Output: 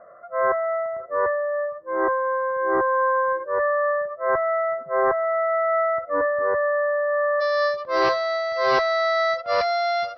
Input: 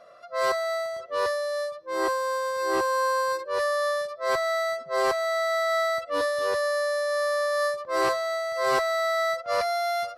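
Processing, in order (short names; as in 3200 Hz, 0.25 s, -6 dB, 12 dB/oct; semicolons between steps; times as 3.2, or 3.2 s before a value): steep low-pass 1900 Hz 72 dB/oct, from 7.4 s 5500 Hz; gain +4 dB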